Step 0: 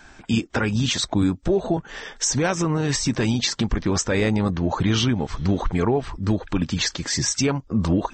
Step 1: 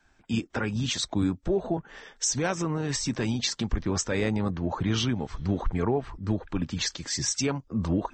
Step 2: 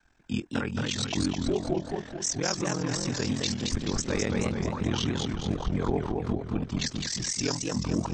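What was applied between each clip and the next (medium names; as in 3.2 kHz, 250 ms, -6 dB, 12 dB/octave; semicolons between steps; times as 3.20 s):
three bands expanded up and down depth 40%; trim -6 dB
ring modulator 21 Hz; modulated delay 215 ms, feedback 52%, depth 195 cents, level -3 dB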